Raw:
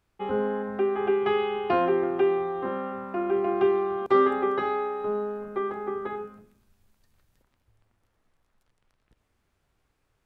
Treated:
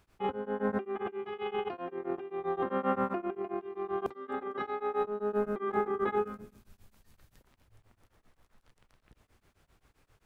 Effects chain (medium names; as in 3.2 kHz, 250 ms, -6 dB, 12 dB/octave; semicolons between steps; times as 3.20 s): compressor with a negative ratio -34 dBFS, ratio -1; tremolo of two beating tones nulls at 7.6 Hz; trim +2 dB